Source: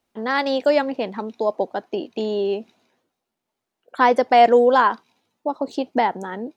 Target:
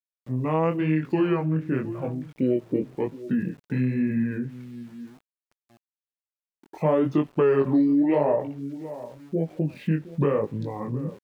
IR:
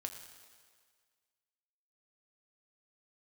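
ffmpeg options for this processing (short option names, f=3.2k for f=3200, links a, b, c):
-filter_complex "[0:a]equalizer=f=250:w=0.61:g=4,asplit=2[a][b];[b]adelay=419,lowpass=f=2k:p=1,volume=-18dB,asplit=2[c][d];[d]adelay=419,lowpass=f=2k:p=1,volume=0.15[e];[a][c][e]amix=inputs=3:normalize=0,asetrate=25798,aresample=44100,flanger=delay=18.5:depth=6.8:speed=0.95,acrossover=split=820|4300[f][g][h];[f]acompressor=threshold=-19dB:ratio=4[i];[g]acompressor=threshold=-32dB:ratio=4[j];[h]acompressor=threshold=-59dB:ratio=4[k];[i][j][k]amix=inputs=3:normalize=0,aeval=exprs='val(0)*gte(abs(val(0)),0.00299)':c=same,adynamicequalizer=threshold=0.00398:dfrequency=3400:dqfactor=0.7:tfrequency=3400:tqfactor=0.7:attack=5:release=100:ratio=0.375:range=2.5:mode=cutabove:tftype=highshelf"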